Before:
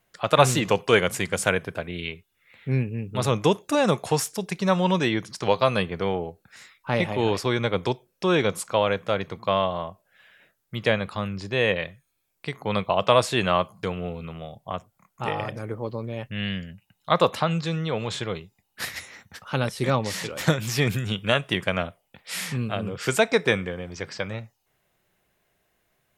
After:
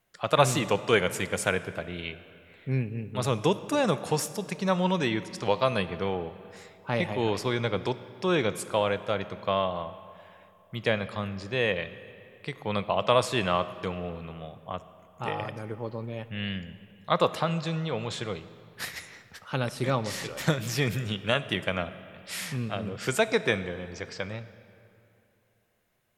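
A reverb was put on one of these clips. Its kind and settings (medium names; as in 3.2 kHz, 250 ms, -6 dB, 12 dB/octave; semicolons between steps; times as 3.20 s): algorithmic reverb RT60 2.8 s, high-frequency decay 0.7×, pre-delay 15 ms, DRR 14 dB; trim -4 dB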